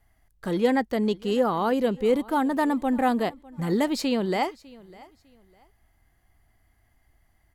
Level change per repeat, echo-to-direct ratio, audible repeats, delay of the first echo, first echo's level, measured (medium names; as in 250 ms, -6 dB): -11.5 dB, -22.0 dB, 2, 602 ms, -22.5 dB